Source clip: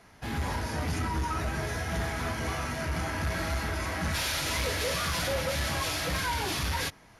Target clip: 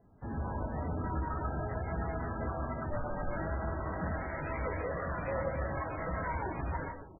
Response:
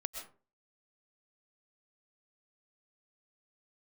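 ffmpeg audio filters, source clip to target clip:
-filter_complex "[0:a]asplit=2[link_01][link_02];[link_02]adelay=630,lowpass=frequency=2300:poles=1,volume=-17dB,asplit=2[link_03][link_04];[link_04]adelay=630,lowpass=frequency=2300:poles=1,volume=0.47,asplit=2[link_05][link_06];[link_06]adelay=630,lowpass=frequency=2300:poles=1,volume=0.47,asplit=2[link_07][link_08];[link_08]adelay=630,lowpass=frequency=2300:poles=1,volume=0.47[link_09];[link_01][link_03][link_05][link_07][link_09]amix=inputs=5:normalize=0,asoftclip=type=tanh:threshold=-26.5dB[link_10];[1:a]atrim=start_sample=2205[link_11];[link_10][link_11]afir=irnorm=-1:irlink=0,asettb=1/sr,asplit=3[link_12][link_13][link_14];[link_12]atrim=end=2.904[link_15];[link_13]atrim=start=2.9:end=3.37,asetpts=PTS-STARTPTS,afade=type=in:duration=0.004:curve=qsin,afade=type=out:start_time=0.466:duration=0.004:curve=qsin,afreqshift=-57[link_16];[link_14]atrim=start=3.366[link_17];[link_15][link_16]acrossfade=duration=0.004:curve1=hsin:curve2=qsin[link_18];[link_18][link_17]acrossfade=duration=0.004:curve1=qsin:curve2=hsin,adynamicsmooth=sensitivity=3:basefreq=540" -ar 16000 -c:a libmp3lame -b:a 8k

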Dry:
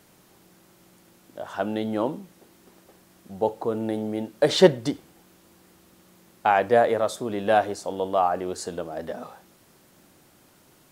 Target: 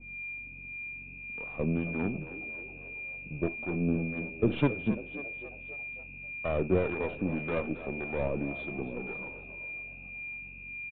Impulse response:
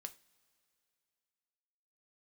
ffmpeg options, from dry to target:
-filter_complex "[0:a]aeval=exprs='if(lt(val(0),0),0.251*val(0),val(0))':channel_layout=same,equalizer=frequency=260:width=0.75:gain=11,acrossover=split=100[link_01][link_02];[link_02]aeval=exprs='clip(val(0),-1,0.112)':channel_layout=same[link_03];[link_01][link_03]amix=inputs=2:normalize=0,aeval=exprs='val(0)+0.00501*(sin(2*PI*60*n/s)+sin(2*PI*2*60*n/s)/2+sin(2*PI*3*60*n/s)/3+sin(2*PI*4*60*n/s)/4+sin(2*PI*5*60*n/s)/5)':channel_layout=same,asetrate=34006,aresample=44100,atempo=1.29684,aeval=exprs='val(0)+0.0355*sin(2*PI*2400*n/s)':channel_layout=same,acrossover=split=710[link_04][link_05];[link_04]aeval=exprs='val(0)*(1-0.7/2+0.7/2*cos(2*PI*1.8*n/s))':channel_layout=same[link_06];[link_05]aeval=exprs='val(0)*(1-0.7/2-0.7/2*cos(2*PI*1.8*n/s))':channel_layout=same[link_07];[link_06][link_07]amix=inputs=2:normalize=0,asplit=2[link_08][link_09];[link_09]asplit=5[link_10][link_11][link_12][link_13][link_14];[link_10]adelay=272,afreqshift=73,volume=-14dB[link_15];[link_11]adelay=544,afreqshift=146,volume=-19.4dB[link_16];[link_12]adelay=816,afreqshift=219,volume=-24.7dB[link_17];[link_13]adelay=1088,afreqshift=292,volume=-30.1dB[link_18];[link_14]adelay=1360,afreqshift=365,volume=-35.4dB[link_19];[link_15][link_16][link_17][link_18][link_19]amix=inputs=5:normalize=0[link_20];[link_08][link_20]amix=inputs=2:normalize=0,aresample=8000,aresample=44100,adynamicequalizer=threshold=0.00891:dfrequency=1700:dqfactor=0.7:tfrequency=1700:tqfactor=0.7:attack=5:release=100:ratio=0.375:range=2:mode=cutabove:tftype=highshelf,volume=-5dB"

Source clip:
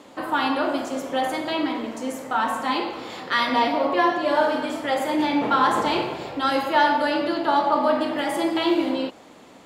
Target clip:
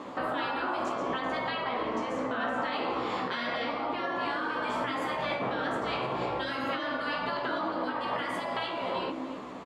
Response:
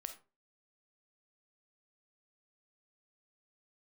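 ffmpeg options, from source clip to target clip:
-filter_complex "[0:a]asettb=1/sr,asplit=3[link_01][link_02][link_03];[link_01]atrim=end=0.924[link_04];[link_02]atrim=start=0.92:end=2.73,asetpts=PTS-STARTPTS,afade=type=in:duration=0.004:curve=qsin,afade=type=out:start_time=1.806:duration=0.004:curve=qsin,lowpass=5600[link_05];[link_03]atrim=start=2.726[link_06];[link_04][link_05]acrossfade=duration=0.004:curve1=hsin:curve2=qsin[link_07];[link_07][link_06]acrossfade=duration=0.004:curve1=qsin:curve2=hsin,aecho=1:1:53|301:0.126|0.112,acompressor=threshold=-24dB:ratio=4,equalizer=frequency=1100:width_type=o:width=0.36:gain=8,asplit=2[link_08][link_09];[link_09]adelay=16,volume=-5.5dB[link_10];[link_08][link_10]amix=inputs=2:normalize=0,afftfilt=real='re*lt(hypot(re,im),0.2)':imag='im*lt(hypot(re,im),0.2)':win_size=1024:overlap=0.75,aemphasis=mode=reproduction:type=75fm,alimiter=level_in=1dB:limit=-24dB:level=0:latency=1:release=340,volume=-1dB,volume=3.5dB"

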